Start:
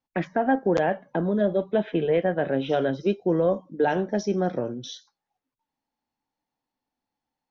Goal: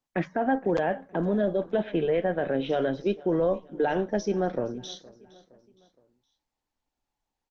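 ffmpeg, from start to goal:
ffmpeg -i in.wav -filter_complex "[0:a]asettb=1/sr,asplit=3[link_01][link_02][link_03];[link_01]atrim=end=1.264[link_04];[link_02]atrim=start=1.26:end=1.8,asetpts=PTS-STARTPTS,afade=type=in:duration=0.004:curve=qsin,afade=type=out:start_time=0.536:duration=0.004:curve=qsin,bandreject=frequency=229.3:width_type=h:width=4,bandreject=frequency=458.6:width_type=h:width=4,bandreject=frequency=687.9:width_type=h:width=4,bandreject=frequency=917.2:width_type=h:width=4,bandreject=frequency=1146.5:width_type=h:width=4,bandreject=frequency=1375.8:width_type=h:width=4,bandreject=frequency=1605.1:width_type=h:width=4[link_05];[link_03]atrim=start=1.796[link_06];[link_04][link_05]acrossfade=duration=0.004:curve1=hsin:curve2=qsin[link_07];[link_07][link_06]acrossfade=duration=0.004:curve1=qsin:curve2=hsin,asubboost=boost=7.5:cutoff=51,alimiter=limit=-16.5dB:level=0:latency=1:release=11,asplit=2[link_08][link_09];[link_09]aecho=0:1:466|932|1398:0.0841|0.0387|0.0178[link_10];[link_08][link_10]amix=inputs=2:normalize=0" -ar 48000 -c:a libopus -b:a 20k out.opus

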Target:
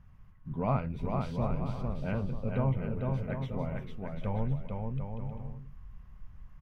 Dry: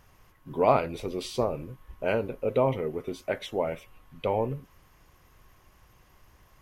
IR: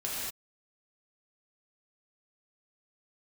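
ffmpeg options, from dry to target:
-af "firequalizer=gain_entry='entry(200,0);entry(320,-19);entry(1200,-13);entry(3900,-22);entry(7900,-28)':delay=0.05:min_phase=1,aecho=1:1:450|742.5|932.6|1056|1137:0.631|0.398|0.251|0.158|0.1,asubboost=boost=2.5:cutoff=55,volume=5dB"

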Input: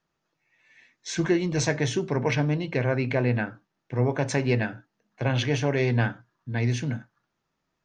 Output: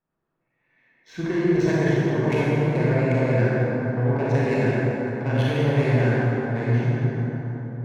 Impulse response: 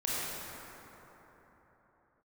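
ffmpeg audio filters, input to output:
-filter_complex "[0:a]adynamicsmooth=sensitivity=2:basefreq=1800[link_01];[1:a]atrim=start_sample=2205,asetrate=40131,aresample=44100[link_02];[link_01][link_02]afir=irnorm=-1:irlink=0,volume=-4.5dB"

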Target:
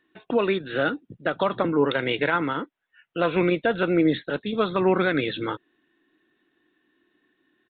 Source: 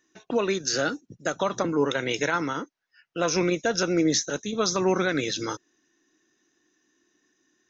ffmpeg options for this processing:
ffmpeg -i in.wav -af "aresample=8000,aresample=44100,volume=2.5dB" out.wav

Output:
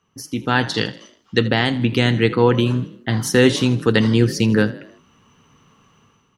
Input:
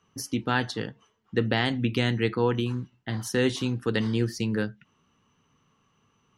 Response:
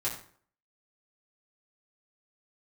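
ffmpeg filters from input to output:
-filter_complex "[0:a]asettb=1/sr,asplit=3[link_01][link_02][link_03];[link_01]atrim=end=0.744[link_04];[link_02]atrim=start=0.74:end=1.46,asetpts=PTS-STARTPTS,afade=type=in:duration=0.004:curve=qsin,afade=type=out:start_time=0.716:duration=0.004:curve=qsin,equalizer=frequency=4800:width_type=o:width=1.7:gain=14[link_05];[link_03]atrim=start=1.456[link_06];[link_04][link_05]acrossfade=duration=0.004:curve1=hsin:curve2=qsin[link_07];[link_07][link_06]acrossfade=duration=0.004:curve1=qsin:curve2=hsin,dynaudnorm=framelen=130:gausssize=7:maxgain=13dB,asplit=5[link_08][link_09][link_10][link_11][link_12];[link_09]adelay=80,afreqshift=37,volume=-17.5dB[link_13];[link_10]adelay=160,afreqshift=74,volume=-23.5dB[link_14];[link_11]adelay=240,afreqshift=111,volume=-29.5dB[link_15];[link_12]adelay=320,afreqshift=148,volume=-35.6dB[link_16];[link_08][link_13][link_14][link_15][link_16]amix=inputs=5:normalize=0"

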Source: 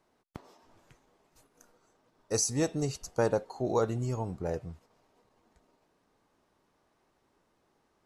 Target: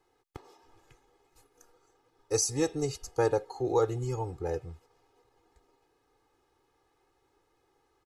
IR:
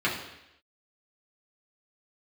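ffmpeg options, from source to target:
-af "aecho=1:1:2.4:0.99,volume=-2.5dB"

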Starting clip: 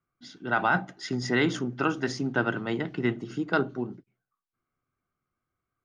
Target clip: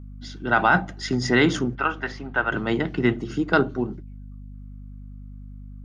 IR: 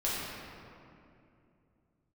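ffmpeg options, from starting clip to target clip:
-filter_complex "[0:a]asettb=1/sr,asplit=3[link_01][link_02][link_03];[link_01]atrim=end=1.754[link_04];[link_02]atrim=start=1.75:end=2.52,asetpts=PTS-STARTPTS,afade=type=in:duration=0.004:curve=qsin,afade=type=out:start_time=0.766:duration=0.004:curve=qsin,acrossover=split=600 3300:gain=0.178 1 0.0794[link_05][link_06][link_07];[link_05][link_06][link_07]amix=inputs=3:normalize=0[link_08];[link_03]atrim=start=2.516[link_09];[link_04][link_08]acrossfade=duration=0.004:curve1=hsin:curve2=qsin[link_10];[link_10][link_09]acrossfade=duration=0.004:curve1=qsin:curve2=hsin,aeval=exprs='val(0)+0.00631*(sin(2*PI*50*n/s)+sin(2*PI*2*50*n/s)/2+sin(2*PI*3*50*n/s)/3+sin(2*PI*4*50*n/s)/4+sin(2*PI*5*50*n/s)/5)':channel_layout=same,volume=6dB"

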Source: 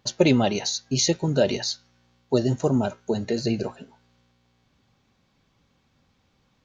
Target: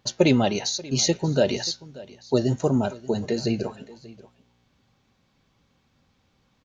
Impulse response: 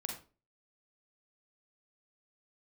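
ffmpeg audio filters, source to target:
-af "aecho=1:1:584:0.1"

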